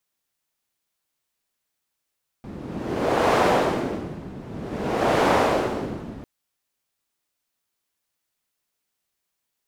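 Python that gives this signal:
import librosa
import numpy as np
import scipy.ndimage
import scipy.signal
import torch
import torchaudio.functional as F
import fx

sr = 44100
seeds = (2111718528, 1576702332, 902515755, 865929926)

y = fx.wind(sr, seeds[0], length_s=3.8, low_hz=200.0, high_hz=670.0, q=1.1, gusts=2, swing_db=17.5)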